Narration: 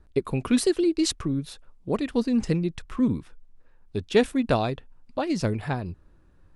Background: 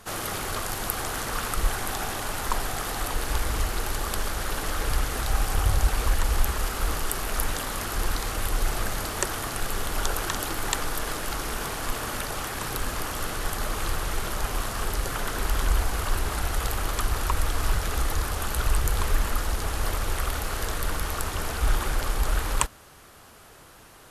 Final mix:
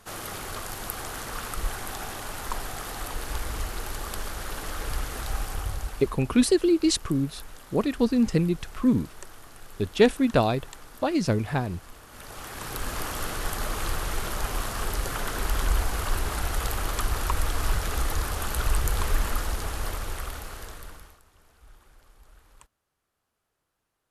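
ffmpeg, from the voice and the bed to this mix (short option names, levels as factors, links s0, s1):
-filter_complex "[0:a]adelay=5850,volume=1.19[s0];[1:a]volume=3.98,afade=t=out:st=5.3:d=0.88:silence=0.223872,afade=t=in:st=12.09:d=0.93:silence=0.141254,afade=t=out:st=19.31:d=1.89:silence=0.0354813[s1];[s0][s1]amix=inputs=2:normalize=0"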